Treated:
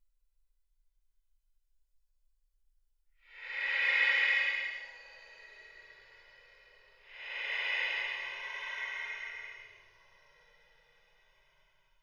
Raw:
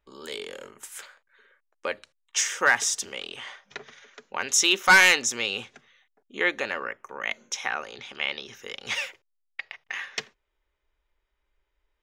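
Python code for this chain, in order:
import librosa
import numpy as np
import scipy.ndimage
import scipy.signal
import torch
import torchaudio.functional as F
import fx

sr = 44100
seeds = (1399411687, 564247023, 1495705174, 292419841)

y = x + 0.92 * np.pad(x, (int(2.0 * sr / 1000.0), 0))[:len(x)]
y = fx.paulstretch(y, sr, seeds[0], factor=32.0, window_s=0.05, from_s=9.47)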